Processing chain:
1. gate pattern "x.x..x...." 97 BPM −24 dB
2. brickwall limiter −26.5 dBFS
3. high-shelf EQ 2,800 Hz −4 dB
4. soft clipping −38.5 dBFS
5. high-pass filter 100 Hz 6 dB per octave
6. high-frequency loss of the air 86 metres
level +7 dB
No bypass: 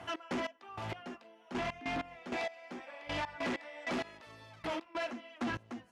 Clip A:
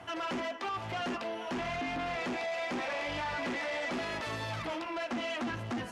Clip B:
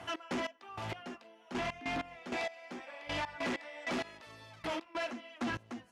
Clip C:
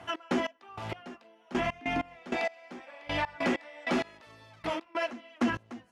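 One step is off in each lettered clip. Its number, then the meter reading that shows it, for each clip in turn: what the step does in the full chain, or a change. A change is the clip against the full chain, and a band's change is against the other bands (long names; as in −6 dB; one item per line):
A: 1, 250 Hz band −2.0 dB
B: 3, 8 kHz band +3.0 dB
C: 4, distortion level −8 dB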